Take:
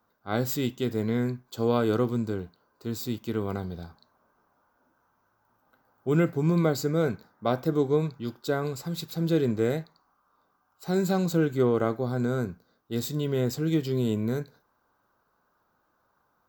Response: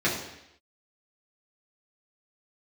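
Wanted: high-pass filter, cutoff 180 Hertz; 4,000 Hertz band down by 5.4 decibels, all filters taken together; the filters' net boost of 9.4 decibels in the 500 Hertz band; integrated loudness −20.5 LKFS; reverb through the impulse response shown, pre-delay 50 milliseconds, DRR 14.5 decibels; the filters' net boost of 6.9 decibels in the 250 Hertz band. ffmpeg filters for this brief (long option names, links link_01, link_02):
-filter_complex "[0:a]highpass=180,equalizer=frequency=250:width_type=o:gain=7.5,equalizer=frequency=500:width_type=o:gain=9,equalizer=frequency=4000:width_type=o:gain=-6.5,asplit=2[link_01][link_02];[1:a]atrim=start_sample=2205,adelay=50[link_03];[link_02][link_03]afir=irnorm=-1:irlink=0,volume=-28dB[link_04];[link_01][link_04]amix=inputs=2:normalize=0"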